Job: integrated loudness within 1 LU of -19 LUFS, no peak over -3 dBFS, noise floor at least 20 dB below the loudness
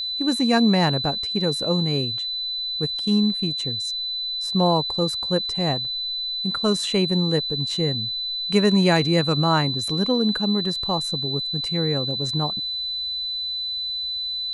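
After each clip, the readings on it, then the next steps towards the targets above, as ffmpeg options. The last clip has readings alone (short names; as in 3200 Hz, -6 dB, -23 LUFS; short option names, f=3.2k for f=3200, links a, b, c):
steady tone 4000 Hz; tone level -25 dBFS; loudness -22.0 LUFS; peak -5.5 dBFS; loudness target -19.0 LUFS
-> -af "bandreject=f=4k:w=30"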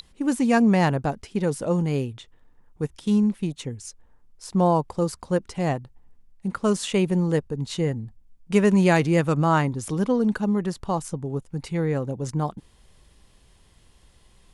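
steady tone none; loudness -24.0 LUFS; peak -6.0 dBFS; loudness target -19.0 LUFS
-> -af "volume=5dB,alimiter=limit=-3dB:level=0:latency=1"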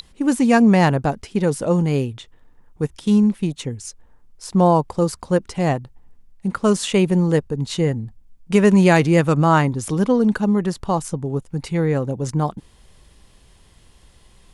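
loudness -19.0 LUFS; peak -3.0 dBFS; noise floor -52 dBFS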